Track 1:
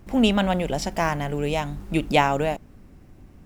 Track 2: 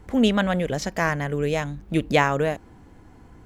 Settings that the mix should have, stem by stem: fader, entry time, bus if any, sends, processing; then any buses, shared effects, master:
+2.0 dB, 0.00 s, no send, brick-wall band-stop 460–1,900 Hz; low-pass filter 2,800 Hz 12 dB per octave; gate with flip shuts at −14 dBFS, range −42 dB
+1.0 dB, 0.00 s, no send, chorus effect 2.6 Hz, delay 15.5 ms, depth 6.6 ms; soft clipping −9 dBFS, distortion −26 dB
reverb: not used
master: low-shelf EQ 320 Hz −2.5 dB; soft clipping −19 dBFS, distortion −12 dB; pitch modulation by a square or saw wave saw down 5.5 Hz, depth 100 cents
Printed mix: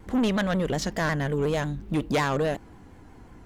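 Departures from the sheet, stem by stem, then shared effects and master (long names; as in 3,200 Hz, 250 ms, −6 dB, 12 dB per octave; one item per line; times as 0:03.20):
stem 1 +2.0 dB → −5.5 dB
stem 2: missing chorus effect 2.6 Hz, delay 15.5 ms, depth 6.6 ms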